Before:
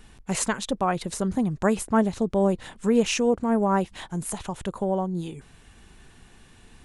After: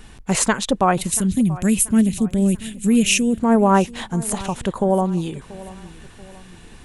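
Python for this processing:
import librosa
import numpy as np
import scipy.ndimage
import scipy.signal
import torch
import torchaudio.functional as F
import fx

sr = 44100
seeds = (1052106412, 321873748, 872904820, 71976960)

y = fx.curve_eq(x, sr, hz=(230.0, 1000.0, 2600.0, 4700.0, 11000.0), db=(0, -25, 3, -4, 12), at=(0.97, 3.39))
y = fx.echo_feedback(y, sr, ms=684, feedback_pct=43, wet_db=-19)
y = F.gain(torch.from_numpy(y), 7.5).numpy()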